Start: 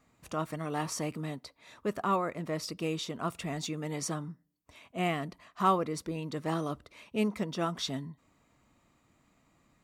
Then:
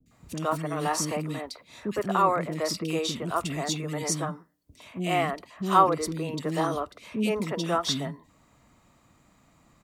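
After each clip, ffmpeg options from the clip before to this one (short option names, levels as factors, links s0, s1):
-filter_complex "[0:a]acrossover=split=220|970|3800[s0][s1][s2][s3];[s0]alimiter=level_in=7.08:limit=0.0631:level=0:latency=1,volume=0.141[s4];[s4][s1][s2][s3]amix=inputs=4:normalize=0,acrossover=split=350|2400[s5][s6][s7];[s7]adelay=60[s8];[s6]adelay=110[s9];[s5][s9][s8]amix=inputs=3:normalize=0,volume=2.51"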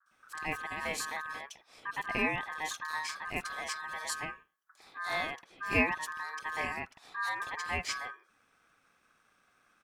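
-af "aeval=exprs='val(0)*sin(2*PI*1400*n/s)':c=same,volume=0.531"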